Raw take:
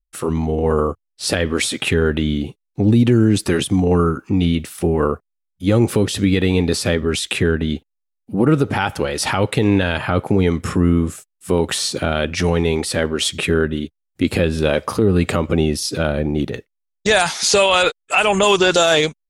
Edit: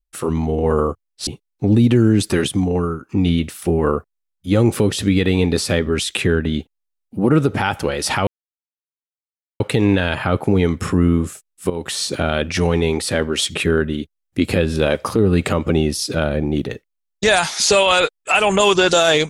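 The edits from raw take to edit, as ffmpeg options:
ffmpeg -i in.wav -filter_complex "[0:a]asplit=5[link_01][link_02][link_03][link_04][link_05];[link_01]atrim=end=1.272[link_06];[link_02]atrim=start=2.428:end=4.25,asetpts=PTS-STARTPTS,afade=type=out:start_time=1.162:duration=0.66:silence=0.281838[link_07];[link_03]atrim=start=4.25:end=9.43,asetpts=PTS-STARTPTS,afade=type=in:duration=0.004:curve=hsin:silence=0.281838,afade=type=out:start_time=5.176:duration=0.004:curve=hsin,apad=pad_dur=1.33[link_08];[link_04]atrim=start=9.43:end=11.53,asetpts=PTS-STARTPTS,afade=type=in:duration=0.004:curve=hsin,afade=type=out:start_time=2.096:duration=0.004:curve=hsin:silence=0.223872[link_09];[link_05]atrim=start=11.53,asetpts=PTS-STARTPTS,afade=type=in:duration=0.39:silence=0.223872[link_10];[link_07][link_08][link_09][link_10]concat=n=4:v=0:a=1[link_11];[link_06][link_11]acrossfade=duration=0.004:curve1=hsin:curve2=hsin" out.wav

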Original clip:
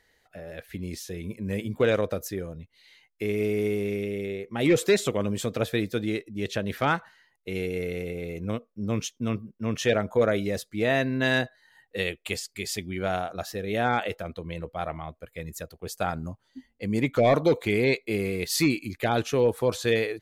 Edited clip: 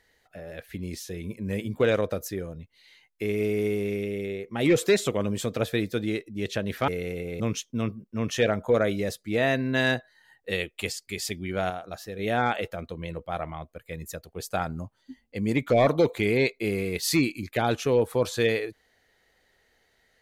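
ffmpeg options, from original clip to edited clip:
ffmpeg -i in.wav -filter_complex "[0:a]asplit=5[link_01][link_02][link_03][link_04][link_05];[link_01]atrim=end=6.882[link_06];[link_02]atrim=start=7.778:end=8.302[link_07];[link_03]atrim=start=8.868:end=13.172[link_08];[link_04]atrim=start=13.168:end=13.662,asetpts=PTS-STARTPTS,volume=-4.5dB[link_09];[link_05]atrim=start=13.658[link_10];[link_06][link_07]acrossfade=duration=0.004:curve1=hsin:curve2=hsin[link_11];[link_11][link_08]acrossfade=duration=0.004:curve1=hsin:curve2=hsin[link_12];[link_12][link_09]acrossfade=duration=0.004:curve1=hsin:curve2=hsin[link_13];[link_13][link_10]acrossfade=duration=0.004:curve1=hsin:curve2=hsin" out.wav

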